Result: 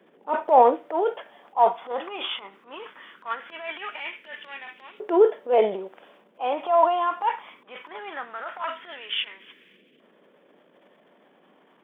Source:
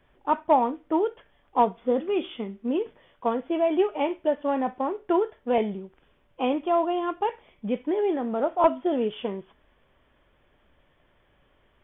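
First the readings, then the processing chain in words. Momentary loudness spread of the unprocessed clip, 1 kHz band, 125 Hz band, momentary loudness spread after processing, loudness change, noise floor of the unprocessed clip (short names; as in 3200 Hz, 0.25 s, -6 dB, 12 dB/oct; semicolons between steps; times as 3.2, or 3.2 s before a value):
9 LU, +3.0 dB, n/a, 21 LU, +2.0 dB, -65 dBFS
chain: transient shaper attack -11 dB, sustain +9 dB; LFO high-pass saw up 0.2 Hz 410–2700 Hz; band noise 180–530 Hz -64 dBFS; gain +2 dB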